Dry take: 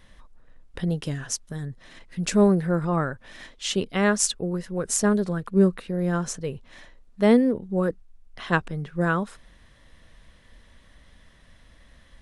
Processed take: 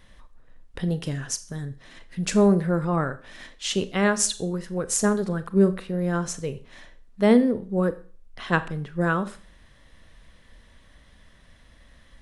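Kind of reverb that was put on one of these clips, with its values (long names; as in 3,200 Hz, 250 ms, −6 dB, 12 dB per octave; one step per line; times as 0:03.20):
four-comb reverb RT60 0.41 s, combs from 29 ms, DRR 12.5 dB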